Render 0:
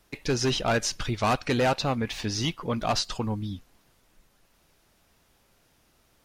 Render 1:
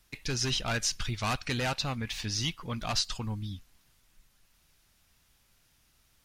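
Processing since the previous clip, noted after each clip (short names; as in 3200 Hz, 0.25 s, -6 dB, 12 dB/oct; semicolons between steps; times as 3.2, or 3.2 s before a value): bell 470 Hz -12 dB 2.7 oct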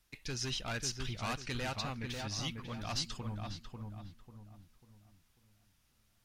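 darkening echo 0.544 s, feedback 38%, low-pass 1600 Hz, level -3.5 dB; gain -7.5 dB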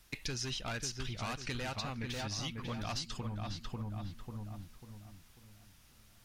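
compressor 6:1, threshold -47 dBFS, peak gain reduction 15 dB; gain +10.5 dB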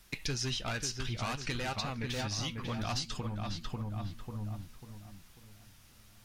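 flange 0.58 Hz, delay 4.9 ms, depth 5.5 ms, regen +73%; gain +7.5 dB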